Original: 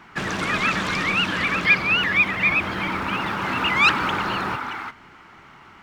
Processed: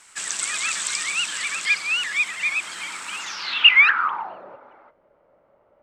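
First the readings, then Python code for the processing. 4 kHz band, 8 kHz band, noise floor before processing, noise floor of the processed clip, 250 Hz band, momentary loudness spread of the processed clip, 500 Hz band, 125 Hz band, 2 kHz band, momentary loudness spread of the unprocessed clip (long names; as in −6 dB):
+4.5 dB, +14.0 dB, −48 dBFS, −62 dBFS, below −20 dB, 17 LU, below −10 dB, below −25 dB, 0.0 dB, 10 LU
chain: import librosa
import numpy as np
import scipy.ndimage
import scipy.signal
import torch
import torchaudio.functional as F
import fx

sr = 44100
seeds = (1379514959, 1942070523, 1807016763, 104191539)

y = np.diff(x, prepend=0.0)
y = fx.quant_dither(y, sr, seeds[0], bits=10, dither='none')
y = fx.filter_sweep_lowpass(y, sr, from_hz=8000.0, to_hz=570.0, start_s=3.18, end_s=4.41, q=7.7)
y = F.gain(torch.from_numpy(y), 5.0).numpy()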